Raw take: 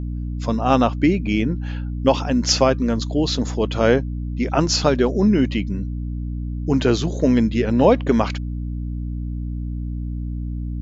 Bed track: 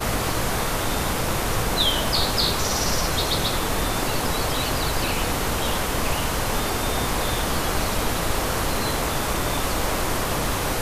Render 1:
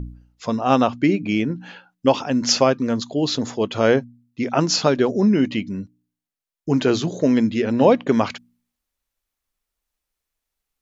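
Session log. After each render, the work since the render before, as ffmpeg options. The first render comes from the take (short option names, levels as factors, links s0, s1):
-af "bandreject=f=60:t=h:w=4,bandreject=f=120:t=h:w=4,bandreject=f=180:t=h:w=4,bandreject=f=240:t=h:w=4,bandreject=f=300:t=h:w=4"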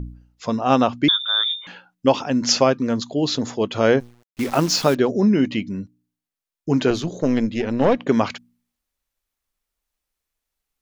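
-filter_complex "[0:a]asettb=1/sr,asplit=3[s0][s1][s2];[s0]atrim=end=1.084[s3];[s1]atrim=start=1.08:end=1.67,asetpts=PTS-STARTPTS,afade=t=in:d=0.004:c=qsin,afade=t=out:st=0.586:d=0.004:c=qsin,lowpass=f=3200:t=q:w=0.5098,lowpass=f=3200:t=q:w=0.6013,lowpass=f=3200:t=q:w=0.9,lowpass=f=3200:t=q:w=2.563,afreqshift=-3800[s4];[s2]atrim=start=1.666[s5];[s3][s4]acrossfade=d=0.004:c1=hsin:c2=qsin[s6];[s6][s5]acrossfade=d=0.004:c1=qsin:c2=hsin,asettb=1/sr,asplit=3[s7][s8][s9];[s7]atrim=end=4.004[s10];[s8]atrim=start=4:end=4.95,asetpts=PTS-STARTPTS,afade=t=in:d=0.004:c=qsin,afade=t=out:st=0.946:d=0.004:c=qsin,acrusher=bits=6:dc=4:mix=0:aa=0.000001[s11];[s9]atrim=start=4.946[s12];[s10][s11]acrossfade=d=0.004:c1=hsin:c2=qsin[s13];[s13][s12]acrossfade=d=0.004:c1=qsin:c2=hsin,asettb=1/sr,asplit=3[s14][s15][s16];[s14]atrim=end=6.904[s17];[s15]atrim=start=6.9:end=8,asetpts=PTS-STARTPTS,afade=t=in:d=0.004:c=qsin,afade=t=out:st=1.096:d=0.004:c=qsin,aeval=exprs='(tanh(2.82*val(0)+0.6)-tanh(0.6))/2.82':c=same[s18];[s16]atrim=start=7.996[s19];[s17][s18]acrossfade=d=0.004:c1=hsin:c2=qsin[s20];[s20][s19]acrossfade=d=0.004:c1=qsin:c2=hsin"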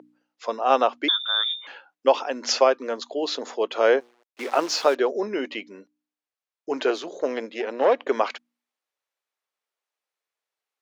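-af "highpass=f=400:w=0.5412,highpass=f=400:w=1.3066,aemphasis=mode=reproduction:type=50kf"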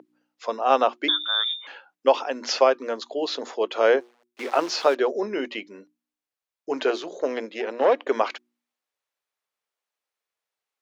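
-filter_complex "[0:a]acrossover=split=6100[s0][s1];[s1]acompressor=threshold=0.00355:ratio=4:attack=1:release=60[s2];[s0][s2]amix=inputs=2:normalize=0,bandreject=f=60:t=h:w=6,bandreject=f=120:t=h:w=6,bandreject=f=180:t=h:w=6,bandreject=f=240:t=h:w=6,bandreject=f=300:t=h:w=6,bandreject=f=360:t=h:w=6"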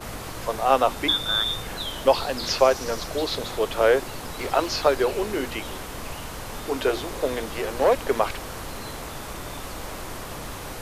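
-filter_complex "[1:a]volume=0.282[s0];[0:a][s0]amix=inputs=2:normalize=0"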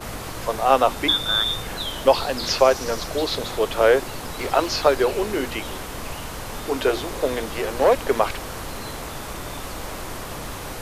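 -af "volume=1.33,alimiter=limit=0.708:level=0:latency=1"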